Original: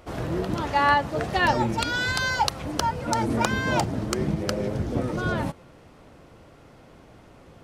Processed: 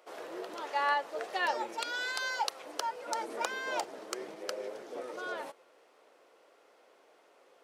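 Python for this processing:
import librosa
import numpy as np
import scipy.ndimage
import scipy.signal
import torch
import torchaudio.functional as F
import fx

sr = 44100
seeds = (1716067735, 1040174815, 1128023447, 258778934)

y = scipy.signal.sosfilt(scipy.signal.cheby1(3, 1.0, 430.0, 'highpass', fs=sr, output='sos'), x)
y = F.gain(torch.from_numpy(y), -8.5).numpy()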